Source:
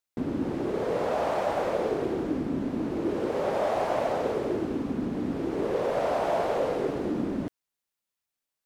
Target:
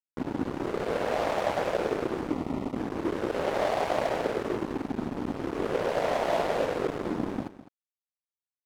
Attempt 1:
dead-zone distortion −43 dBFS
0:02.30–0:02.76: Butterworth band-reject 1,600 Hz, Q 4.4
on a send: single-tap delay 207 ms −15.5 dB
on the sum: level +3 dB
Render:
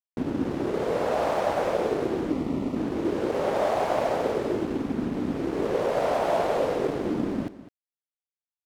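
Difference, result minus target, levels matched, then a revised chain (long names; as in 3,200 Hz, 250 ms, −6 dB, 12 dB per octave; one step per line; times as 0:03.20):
dead-zone distortion: distortion −11 dB
dead-zone distortion −32.5 dBFS
0:02.30–0:02.76: Butterworth band-reject 1,600 Hz, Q 4.4
on a send: single-tap delay 207 ms −15.5 dB
on the sum: level +3 dB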